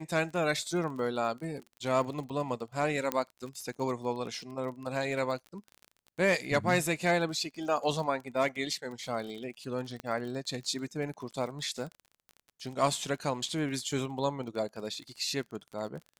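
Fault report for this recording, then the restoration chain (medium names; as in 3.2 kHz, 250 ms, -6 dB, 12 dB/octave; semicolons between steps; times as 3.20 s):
crackle 33 per s -39 dBFS
3.12 s: pop -13 dBFS
10.00 s: pop -24 dBFS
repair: de-click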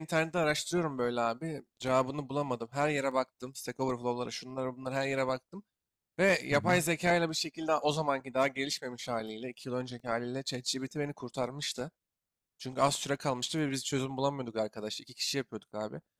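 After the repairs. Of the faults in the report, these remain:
3.12 s: pop
10.00 s: pop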